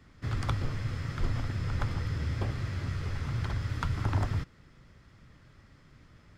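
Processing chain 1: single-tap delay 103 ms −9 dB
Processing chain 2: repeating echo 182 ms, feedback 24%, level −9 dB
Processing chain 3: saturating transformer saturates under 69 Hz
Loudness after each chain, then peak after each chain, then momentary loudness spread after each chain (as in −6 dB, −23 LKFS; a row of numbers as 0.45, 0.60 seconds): −33.0, −33.0, −34.0 LKFS; −15.0, −15.0, −15.0 dBFS; 5, 4, 4 LU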